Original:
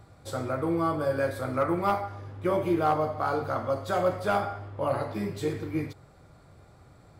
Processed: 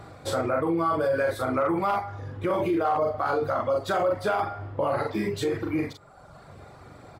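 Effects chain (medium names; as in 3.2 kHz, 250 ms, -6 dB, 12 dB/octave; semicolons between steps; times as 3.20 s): reverb removal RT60 1 s; doubling 42 ms -4 dB; in parallel at +1 dB: compression, threshold -35 dBFS, peak gain reduction 15 dB; on the sum: treble shelf 4.6 kHz -8 dB; peak limiter -22 dBFS, peak gain reduction 10.5 dB; bass shelf 160 Hz -10.5 dB; trim +6 dB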